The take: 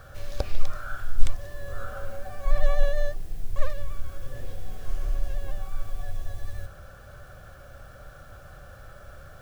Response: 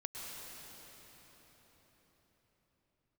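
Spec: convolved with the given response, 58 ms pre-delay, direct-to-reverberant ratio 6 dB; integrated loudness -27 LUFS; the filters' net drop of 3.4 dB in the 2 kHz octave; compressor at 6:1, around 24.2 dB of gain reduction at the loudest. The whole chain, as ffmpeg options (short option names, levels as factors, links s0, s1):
-filter_complex "[0:a]equalizer=f=2000:t=o:g=-4.5,acompressor=threshold=0.0251:ratio=6,asplit=2[s0][s1];[1:a]atrim=start_sample=2205,adelay=58[s2];[s1][s2]afir=irnorm=-1:irlink=0,volume=0.501[s3];[s0][s3]amix=inputs=2:normalize=0,volume=9.44"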